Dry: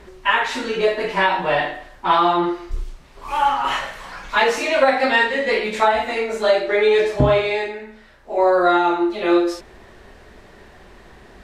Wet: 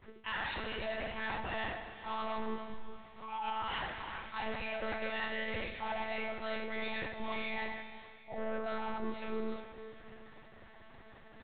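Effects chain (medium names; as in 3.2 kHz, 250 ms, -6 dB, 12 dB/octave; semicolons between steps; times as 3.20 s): expander -41 dBFS; bass shelf 350 Hz -5 dB; comb 5.8 ms, depth 80%; reverse; compression 10:1, threshold -21 dBFS, peak gain reduction 14 dB; reverse; saturation -24.5 dBFS, distortion -11 dB; flange 0.53 Hz, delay 5.4 ms, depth 9.4 ms, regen -76%; monotone LPC vocoder at 8 kHz 220 Hz; feedback delay 740 ms, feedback 41%, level -20 dB; gated-style reverb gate 430 ms rising, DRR 11 dB; trim -4.5 dB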